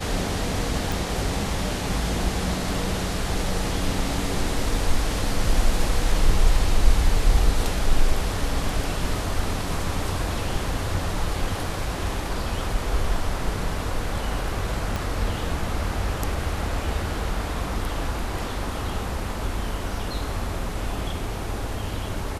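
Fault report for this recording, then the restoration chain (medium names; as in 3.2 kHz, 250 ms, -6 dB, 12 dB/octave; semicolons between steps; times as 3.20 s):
0.92 s: pop
14.96 s: pop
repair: de-click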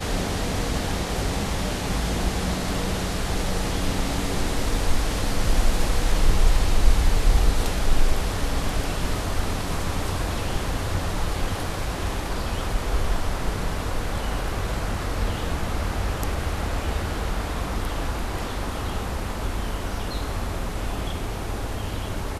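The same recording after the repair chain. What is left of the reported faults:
14.96 s: pop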